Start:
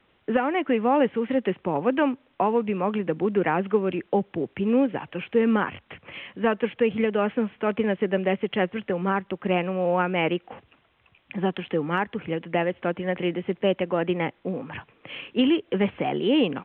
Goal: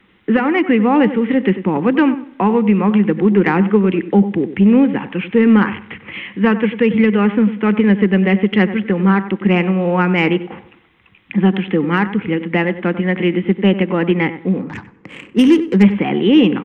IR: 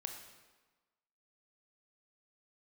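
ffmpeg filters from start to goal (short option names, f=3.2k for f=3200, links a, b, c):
-filter_complex "[0:a]asettb=1/sr,asplit=3[a][b][c];[a]atrim=end=14.604[d];[b]atrim=start=14.6:end=15.83,asetpts=PTS-STARTPTS,afade=t=in:d=0.004:c=qsin,afade=t=out:st=1.226:d=0.004:c=qsin,adynamicsmooth=sensitivity=3:basefreq=870[e];[c]atrim=start=15.826[f];[d][e]acrossfade=d=0.004:c1=hsin:c2=qsin[g];[g][f]acrossfade=d=0.004:c1=qsin:c2=hsin,equalizer=f=200:t=o:w=0.33:g=10,equalizer=f=315:t=o:w=0.33:g=5,equalizer=f=630:t=o:w=0.33:g=-12,equalizer=f=2k:t=o:w=0.33:g=6,asplit=2[h][i];[i]adelay=95,lowpass=f=1.8k:p=1,volume=-12.5dB,asplit=2[j][k];[k]adelay=95,lowpass=f=1.8k:p=1,volume=0.25,asplit=2[l][m];[m]adelay=95,lowpass=f=1.8k:p=1,volume=0.25[n];[h][j][l][n]amix=inputs=4:normalize=0,acontrast=40,asplit=2[o][p];[1:a]atrim=start_sample=2205[q];[p][q]afir=irnorm=-1:irlink=0,volume=-15dB[r];[o][r]amix=inputs=2:normalize=0,volume=1dB"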